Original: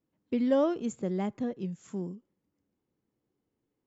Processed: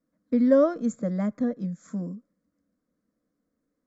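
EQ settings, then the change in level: air absorption 50 m; fixed phaser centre 570 Hz, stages 8; +7.0 dB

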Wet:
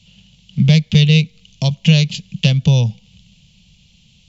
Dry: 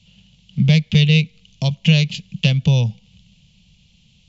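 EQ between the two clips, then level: high shelf 4600 Hz +4.5 dB; dynamic EQ 2400 Hz, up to -4 dB, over -33 dBFS, Q 1.4; +2.5 dB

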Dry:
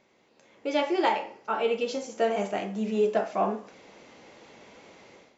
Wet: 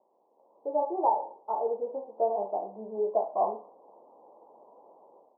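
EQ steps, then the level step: HPF 620 Hz 12 dB/oct; steep low-pass 1000 Hz 72 dB/oct; +2.5 dB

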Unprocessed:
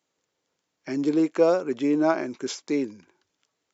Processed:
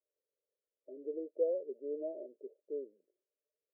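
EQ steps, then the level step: HPF 460 Hz 24 dB/oct; rippled Chebyshev low-pass 620 Hz, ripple 6 dB; -5.0 dB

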